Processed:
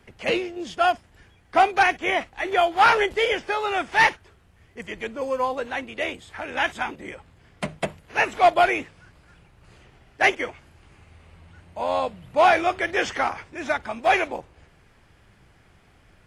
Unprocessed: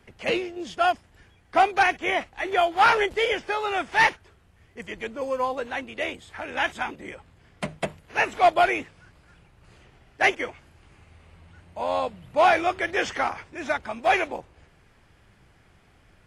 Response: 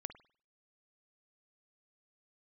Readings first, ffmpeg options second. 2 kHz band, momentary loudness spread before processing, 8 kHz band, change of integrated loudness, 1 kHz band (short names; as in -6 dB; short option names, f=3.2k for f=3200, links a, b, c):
+1.5 dB, 15 LU, +1.5 dB, +1.5 dB, +1.5 dB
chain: -filter_complex "[0:a]asplit=2[a][b];[1:a]atrim=start_sample=2205,atrim=end_sample=3528[c];[b][c]afir=irnorm=-1:irlink=0,volume=-10dB[d];[a][d]amix=inputs=2:normalize=0"